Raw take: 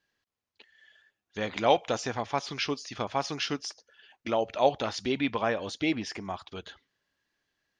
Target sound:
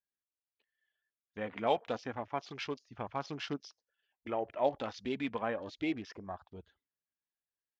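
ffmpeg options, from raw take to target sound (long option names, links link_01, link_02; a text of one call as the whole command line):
ffmpeg -i in.wav -af "afwtdn=0.00891,highshelf=frequency=4400:gain=-9.5,aphaser=in_gain=1:out_gain=1:delay=4.7:decay=0.27:speed=0.29:type=triangular,volume=-7dB" out.wav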